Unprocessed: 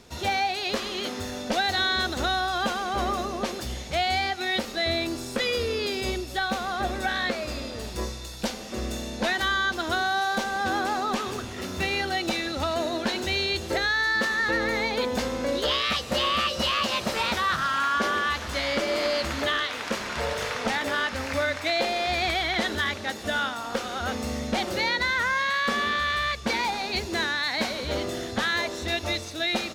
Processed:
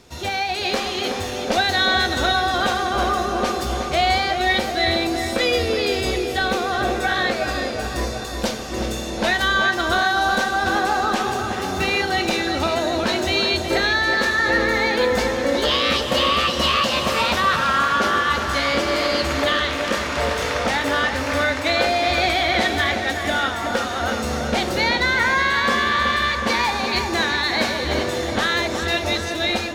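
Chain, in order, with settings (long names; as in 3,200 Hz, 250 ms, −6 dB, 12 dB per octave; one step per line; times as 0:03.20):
automatic gain control gain up to 3.5 dB
feedback echo with a low-pass in the loop 370 ms, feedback 70%, low-pass 2,600 Hz, level −6 dB
on a send at −9 dB: convolution reverb, pre-delay 3 ms
on the sum: level +1.5 dB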